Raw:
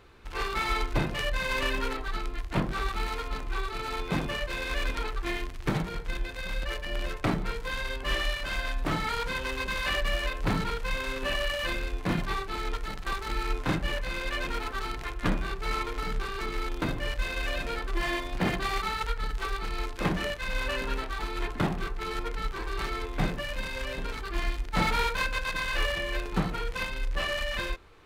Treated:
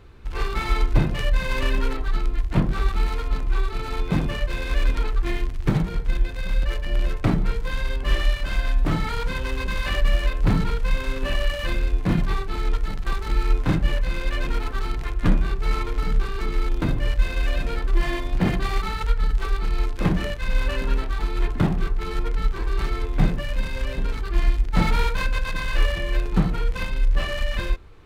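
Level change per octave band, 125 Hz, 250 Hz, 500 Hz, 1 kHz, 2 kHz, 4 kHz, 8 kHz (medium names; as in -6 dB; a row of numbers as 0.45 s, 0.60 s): +10.0 dB, +6.5 dB, +3.0 dB, +0.5 dB, +0.5 dB, 0.0 dB, 0.0 dB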